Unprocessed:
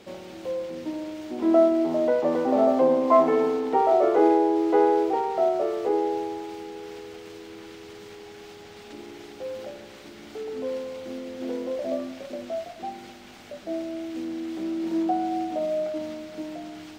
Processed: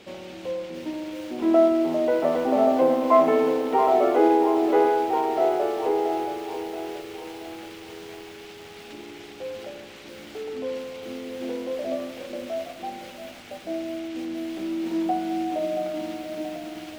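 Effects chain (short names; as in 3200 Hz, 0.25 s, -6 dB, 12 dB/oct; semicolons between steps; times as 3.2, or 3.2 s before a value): bell 2700 Hz +5 dB 1 oct; on a send at -15.5 dB: reverb RT60 0.65 s, pre-delay 90 ms; on the sum: lo-fi delay 0.678 s, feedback 55%, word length 7-bit, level -10 dB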